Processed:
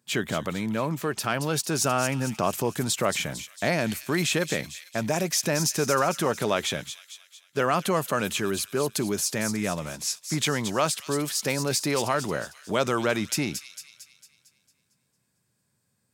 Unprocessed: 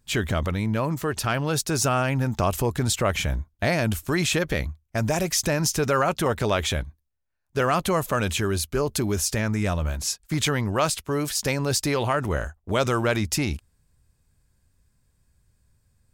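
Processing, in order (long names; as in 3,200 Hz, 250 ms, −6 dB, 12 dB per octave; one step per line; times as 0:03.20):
high-pass filter 140 Hz 24 dB per octave
delay with a high-pass on its return 226 ms, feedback 50%, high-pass 3,600 Hz, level −6 dB
level −1.5 dB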